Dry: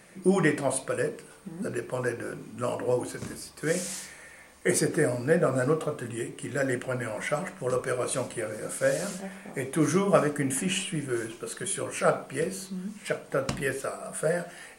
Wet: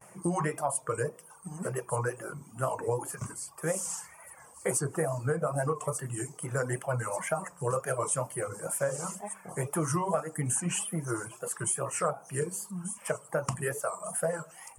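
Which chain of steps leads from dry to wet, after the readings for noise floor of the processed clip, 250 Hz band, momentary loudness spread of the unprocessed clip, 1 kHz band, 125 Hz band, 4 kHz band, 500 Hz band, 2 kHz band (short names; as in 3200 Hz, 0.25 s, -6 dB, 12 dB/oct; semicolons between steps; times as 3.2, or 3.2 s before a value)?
-54 dBFS, -7.5 dB, 12 LU, 0.0 dB, -1.0 dB, -9.5 dB, -5.0 dB, -6.0 dB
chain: HPF 91 Hz; wow and flutter 120 cents; thin delay 1.187 s, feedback 51%, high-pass 4000 Hz, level -12 dB; gate with hold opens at -45 dBFS; ten-band EQ 125 Hz +9 dB, 250 Hz -10 dB, 1000 Hz +10 dB, 2000 Hz -6 dB, 4000 Hz -9 dB, 8000 Hz +7 dB; reverb removal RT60 0.91 s; compressor 12:1, threshold -25 dBFS, peak gain reduction 13 dB; bell 3900 Hz -12.5 dB 0.24 oct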